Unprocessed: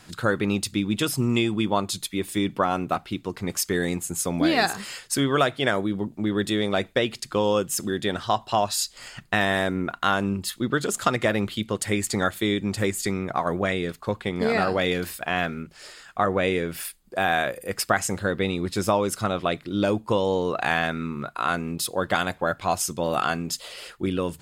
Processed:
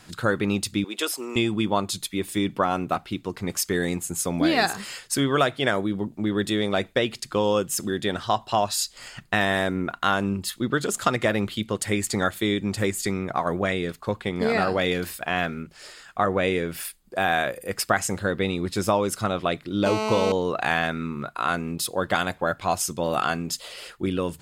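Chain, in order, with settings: 0.84–1.36 HPF 370 Hz 24 dB/oct; 19.86–20.32 GSM buzz -26 dBFS

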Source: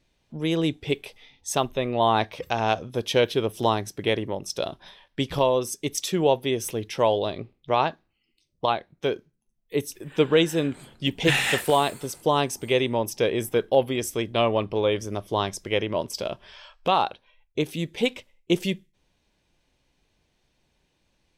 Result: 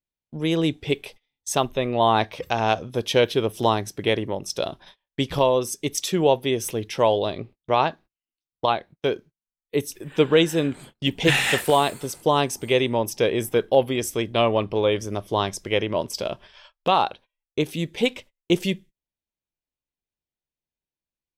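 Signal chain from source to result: gate -45 dBFS, range -29 dB; gain +2 dB

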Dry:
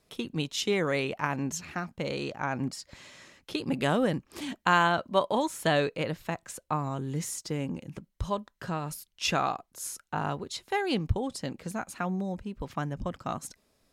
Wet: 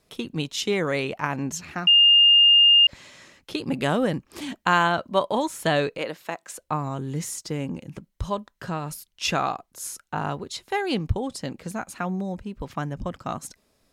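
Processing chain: 1.87–2.87 bleep 2820 Hz -14.5 dBFS; 5.98–6.59 HPF 320 Hz 12 dB/oct; gain +3 dB

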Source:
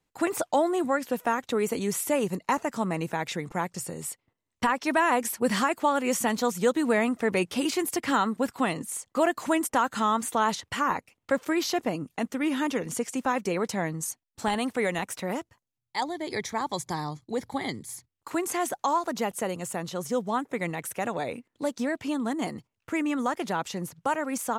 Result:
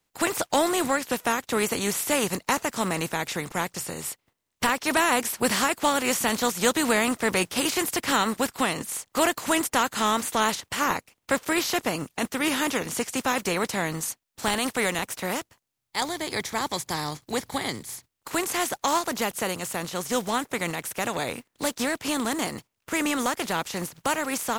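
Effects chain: spectral contrast lowered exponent 0.58; in parallel at -10 dB: hard clip -26 dBFS, distortion -7 dB

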